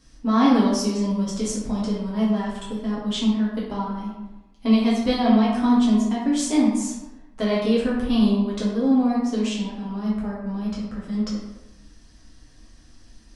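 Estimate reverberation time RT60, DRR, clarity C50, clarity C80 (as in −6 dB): 1.0 s, −7.0 dB, 1.0 dB, 4.0 dB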